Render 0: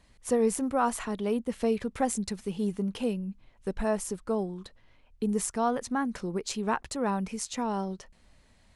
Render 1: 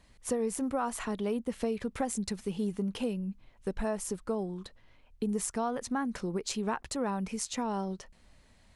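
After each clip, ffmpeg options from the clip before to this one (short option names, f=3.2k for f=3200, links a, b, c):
-af "acompressor=threshold=-28dB:ratio=4"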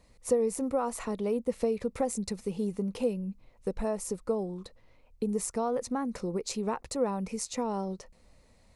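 -af "equalizer=f=500:t=o:w=0.33:g=8,equalizer=f=1.6k:t=o:w=0.33:g=-8,equalizer=f=3.15k:t=o:w=0.33:g=-8"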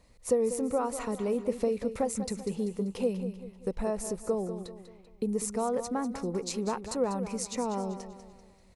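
-af "aecho=1:1:194|388|582|776:0.282|0.121|0.0521|0.0224"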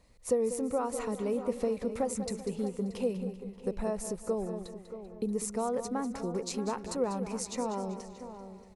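-filter_complex "[0:a]asplit=2[a][b];[b]adelay=629,lowpass=f=2.2k:p=1,volume=-11.5dB,asplit=2[c][d];[d]adelay=629,lowpass=f=2.2k:p=1,volume=0.29,asplit=2[e][f];[f]adelay=629,lowpass=f=2.2k:p=1,volume=0.29[g];[a][c][e][g]amix=inputs=4:normalize=0,volume=-2dB"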